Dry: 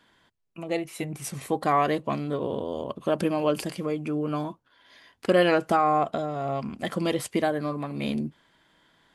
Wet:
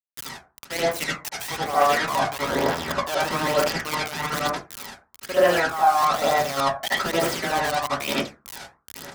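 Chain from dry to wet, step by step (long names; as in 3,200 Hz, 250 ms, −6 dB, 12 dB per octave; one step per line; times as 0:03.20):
spike at every zero crossing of −25 dBFS
two-band tremolo in antiphase 2.4 Hz, depth 50%, crossover 1,600 Hz
in parallel at −2 dB: output level in coarse steps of 11 dB
on the sum: three-way crossover with the lows and the highs turned down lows −17 dB, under 590 Hz, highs −17 dB, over 6,900 Hz
bit reduction 5 bits
high-pass filter 52 Hz
reversed playback
downward compressor 10 to 1, threshold −35 dBFS, peak gain reduction 19 dB
reversed playback
convolution reverb RT60 0.35 s, pre-delay 68 ms, DRR −8 dB
phase shifter 1.1 Hz, delay 1.4 ms, feedback 44%
level +9 dB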